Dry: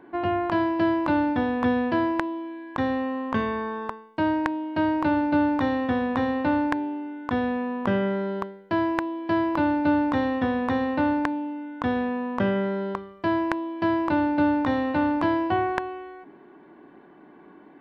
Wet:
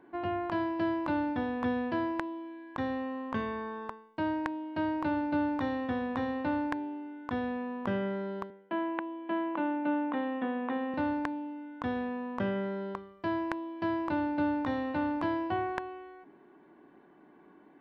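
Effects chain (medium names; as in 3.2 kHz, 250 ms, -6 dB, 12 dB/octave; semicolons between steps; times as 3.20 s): 8.50–10.94 s: elliptic band-pass 210–3100 Hz, stop band 40 dB; trim -8 dB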